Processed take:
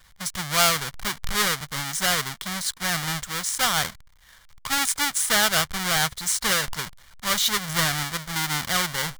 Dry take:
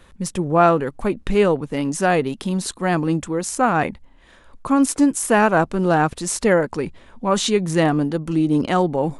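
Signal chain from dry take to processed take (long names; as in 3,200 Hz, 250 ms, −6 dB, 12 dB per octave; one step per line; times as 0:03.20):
each half-wave held at its own peak
low-shelf EQ 250 Hz +4 dB
notch filter 2,600 Hz, Q 5.5
pitch vibrato 0.87 Hz 17 cents
drawn EQ curve 150 Hz 0 dB, 310 Hz −13 dB, 1,100 Hz +8 dB, 2,300 Hz +14 dB
level −15.5 dB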